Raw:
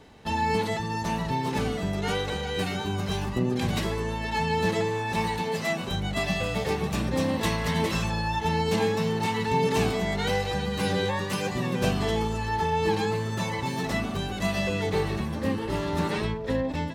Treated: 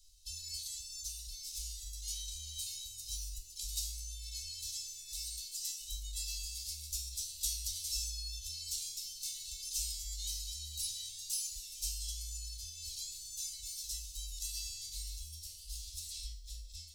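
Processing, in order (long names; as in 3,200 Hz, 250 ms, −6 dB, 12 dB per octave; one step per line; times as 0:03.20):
inverse Chebyshev band-stop filter 130–1,700 Hz, stop band 60 dB
tuned comb filter 76 Hz, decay 0.54 s, harmonics all, mix 80%
level +13 dB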